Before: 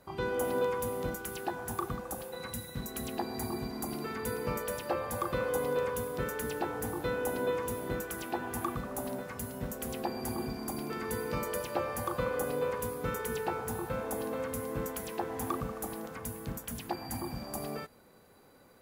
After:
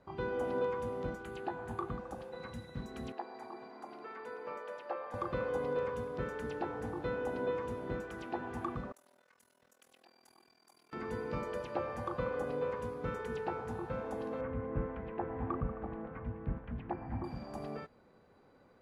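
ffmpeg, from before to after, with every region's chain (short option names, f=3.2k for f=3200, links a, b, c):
-filter_complex "[0:a]asettb=1/sr,asplit=3[a][b][c];[a]atrim=end=1.234[d];[b]atrim=start=1.23:end=1.98,asetpts=PTS-STARTPTS,afade=t=in:d=0.004:c=qsin,afade=t=out:st=0.746:d=0.004:c=qsin,equalizer=f=5.5k:t=o:w=0.21:g=-11,asplit=2[e][f];[f]adelay=18,volume=-13dB[g];[e][g]amix=inputs=2:normalize=0,atrim=end_sample=33075[h];[c]atrim=start=1.976[i];[d][h]acrossfade=d=0.004:c1=hsin:c2=qsin[j];[j][i]acrossfade=d=0.004:c1=qsin:c2=hsin,asettb=1/sr,asplit=3[k][l][m];[k]atrim=end=3.124[n];[l]atrim=start=3.12:end=5.14,asetpts=PTS-STARTPTS,afade=t=in:d=0.004:c=qsin,afade=t=out:st=2.016:d=0.004:c=qsin,highpass=560,highshelf=f=3.1k:g=-9.5[o];[m]atrim=start=5.136[p];[n][o]acrossfade=d=0.004:c1=hsin:c2=qsin[q];[q][p]acrossfade=d=0.004:c1=qsin:c2=hsin,asettb=1/sr,asplit=3[r][s][t];[r]atrim=end=8.924[u];[s]atrim=start=8.92:end=10.93,asetpts=PTS-STARTPTS,afade=t=in:d=0.004:c=qsin,afade=t=out:st=2.006:d=0.004:c=qsin,aderivative,tremolo=f=41:d=0.919[v];[t]atrim=start=10.926[w];[u][v]acrossfade=d=0.004:c1=hsin:c2=qsin[x];[x][w]acrossfade=d=0.004:c1=qsin:c2=hsin,asettb=1/sr,asplit=3[y][z][aa];[y]atrim=end=14.414[ab];[z]atrim=start=14.41:end=17.24,asetpts=PTS-STARTPTS,afade=t=in:d=0.004:c=qsin,afade=t=out:st=2.826:d=0.004:c=qsin,lowpass=f=2.4k:w=0.5412,lowpass=f=2.4k:w=1.3066,lowshelf=f=99:g=12[ac];[aa]atrim=start=17.236[ad];[ab][ac]acrossfade=d=0.004:c1=hsin:c2=qsin[ae];[ae][ad]acrossfade=d=0.004:c1=qsin:c2=hsin,lowpass=5.9k,highshelf=f=3.2k:g=-10.5,volume=-3dB"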